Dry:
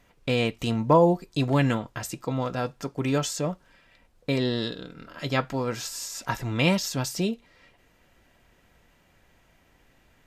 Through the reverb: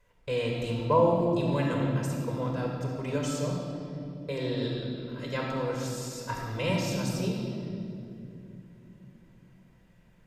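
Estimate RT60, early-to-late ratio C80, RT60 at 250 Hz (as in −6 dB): 2.8 s, 2.5 dB, 4.8 s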